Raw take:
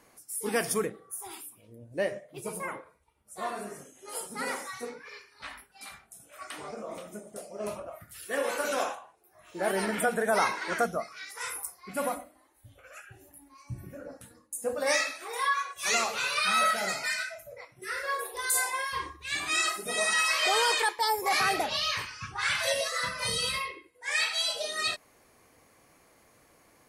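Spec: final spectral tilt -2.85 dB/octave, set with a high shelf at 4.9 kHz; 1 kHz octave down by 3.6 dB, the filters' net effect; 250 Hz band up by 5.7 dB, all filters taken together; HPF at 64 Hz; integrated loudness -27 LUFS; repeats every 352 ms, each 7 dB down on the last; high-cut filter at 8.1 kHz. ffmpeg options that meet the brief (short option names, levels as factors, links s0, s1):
-af "highpass=64,lowpass=8100,equalizer=f=250:t=o:g=7.5,equalizer=f=1000:t=o:g=-5,highshelf=f=4900:g=-5.5,aecho=1:1:352|704|1056|1408|1760:0.447|0.201|0.0905|0.0407|0.0183,volume=1.58"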